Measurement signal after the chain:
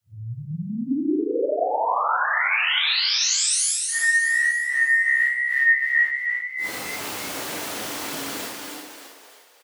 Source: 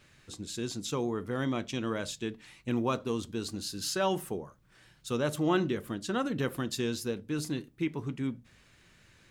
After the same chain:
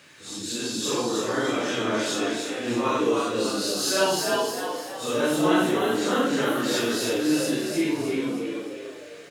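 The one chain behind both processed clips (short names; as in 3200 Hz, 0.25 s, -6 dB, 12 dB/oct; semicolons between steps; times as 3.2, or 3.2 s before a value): phase scrambler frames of 0.2 s; in parallel at -3 dB: compressor, threshold -43 dBFS; on the sum: HPF 190 Hz 12 dB/oct; low shelf 480 Hz -3 dB; on a send: frequency-shifting echo 0.309 s, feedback 47%, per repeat +66 Hz, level -4 dB; on the sum: FDN reverb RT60 1.1 s, low-frequency decay 1.25×, high-frequency decay 0.95×, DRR 6.5 dB; gain +6.5 dB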